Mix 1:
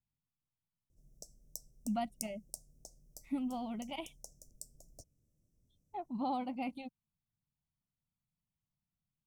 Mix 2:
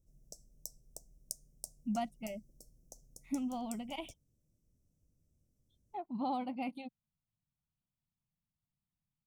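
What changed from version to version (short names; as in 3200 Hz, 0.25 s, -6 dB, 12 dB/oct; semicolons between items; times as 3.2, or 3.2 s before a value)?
background: entry -0.90 s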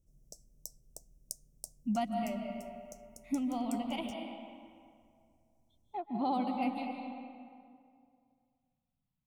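reverb: on, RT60 2.3 s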